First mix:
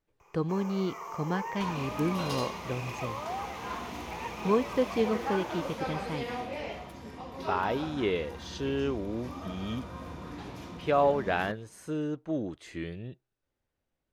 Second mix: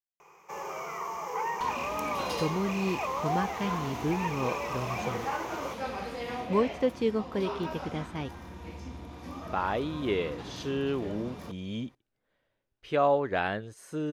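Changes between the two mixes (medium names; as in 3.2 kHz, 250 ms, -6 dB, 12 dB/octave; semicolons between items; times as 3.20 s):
speech: entry +2.05 s; first sound +5.5 dB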